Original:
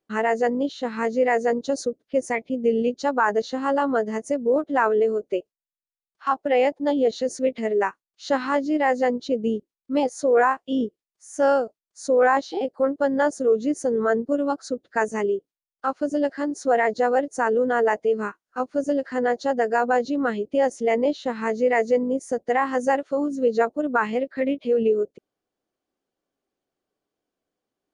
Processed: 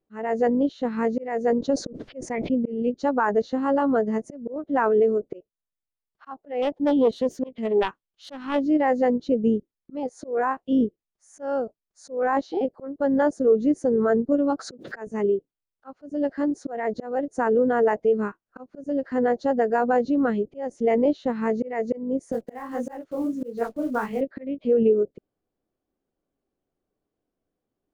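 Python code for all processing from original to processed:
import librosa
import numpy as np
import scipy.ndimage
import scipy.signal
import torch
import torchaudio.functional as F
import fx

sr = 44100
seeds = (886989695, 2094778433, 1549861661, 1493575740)

y = fx.chain(x, sr, fx.lowpass(hz=6500.0, slope=12),
    fx.sustainer(db_per_s=69.0), at=(1.58, 2.9))
y = fx.chain(y, sr, fx.self_delay(depth_ms=0.15),
    fx.peak_eq(hz=3200.0, db=8.5, octaves=0.34), at=(6.62, 8.63))
y = fx.chain(y, sr, fx.highpass(hz=140.0, slope=24),
    fx.pre_swell(db_per_s=96.0), at=(14.59, 15.07))
y = fx.chain(y, sr, fx.block_float(bits=5),
    fx.high_shelf(hz=6700.0, db=7.5),
    fx.detune_double(cents=56), at=(22.32, 24.21))
y = fx.tilt_eq(y, sr, slope=-3.0)
y = fx.auto_swell(y, sr, attack_ms=308.0)
y = y * 10.0 ** (-2.5 / 20.0)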